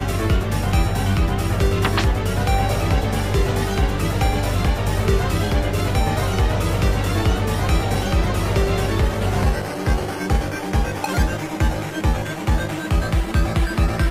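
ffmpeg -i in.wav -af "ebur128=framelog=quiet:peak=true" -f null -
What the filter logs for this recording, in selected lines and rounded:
Integrated loudness:
  I:         -20.9 LUFS
  Threshold: -30.9 LUFS
Loudness range:
  LRA:         2.1 LU
  Threshold: -40.9 LUFS
  LRA low:   -22.3 LUFS
  LRA high:  -20.2 LUFS
True peak:
  Peak:       -6.0 dBFS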